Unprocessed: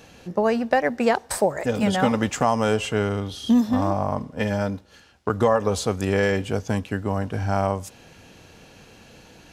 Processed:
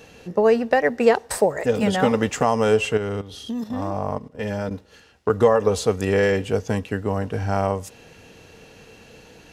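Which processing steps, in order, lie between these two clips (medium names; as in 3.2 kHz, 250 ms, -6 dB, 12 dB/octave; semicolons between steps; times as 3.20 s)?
small resonant body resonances 450/1900/2700 Hz, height 8 dB, ringing for 45 ms; 2.97–4.71 s: level held to a coarse grid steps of 13 dB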